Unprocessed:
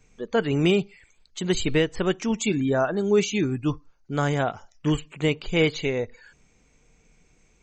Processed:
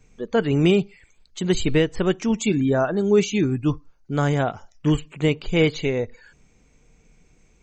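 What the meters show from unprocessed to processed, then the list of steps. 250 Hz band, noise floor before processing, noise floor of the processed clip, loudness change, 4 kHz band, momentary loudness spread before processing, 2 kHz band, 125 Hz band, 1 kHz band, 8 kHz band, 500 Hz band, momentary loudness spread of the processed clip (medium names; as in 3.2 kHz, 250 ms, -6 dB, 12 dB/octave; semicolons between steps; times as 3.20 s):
+3.5 dB, -62 dBFS, -59 dBFS, +2.5 dB, 0.0 dB, 9 LU, +0.5 dB, +4.0 dB, +1.0 dB, 0.0 dB, +2.5 dB, 9 LU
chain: bass shelf 490 Hz +4.5 dB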